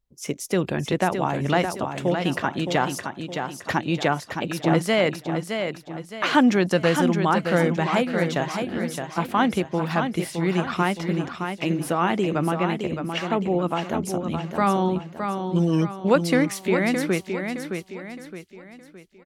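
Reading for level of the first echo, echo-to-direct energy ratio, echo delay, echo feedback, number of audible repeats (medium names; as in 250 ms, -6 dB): -6.5 dB, -5.5 dB, 616 ms, 40%, 4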